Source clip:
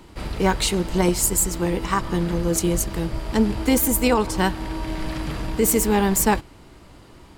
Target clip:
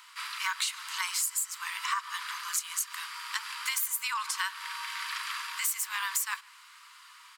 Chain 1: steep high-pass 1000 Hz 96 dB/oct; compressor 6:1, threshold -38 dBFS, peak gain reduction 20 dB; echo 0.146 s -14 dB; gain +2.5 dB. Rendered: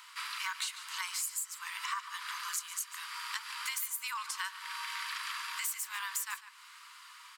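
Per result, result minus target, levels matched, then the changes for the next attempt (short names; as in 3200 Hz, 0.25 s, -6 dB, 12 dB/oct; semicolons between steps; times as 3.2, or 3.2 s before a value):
echo-to-direct +12 dB; compressor: peak gain reduction +6 dB
change: echo 0.146 s -26 dB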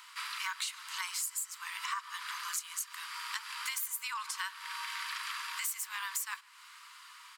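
compressor: peak gain reduction +6 dB
change: compressor 6:1, threshold -31 dBFS, peak gain reduction 14 dB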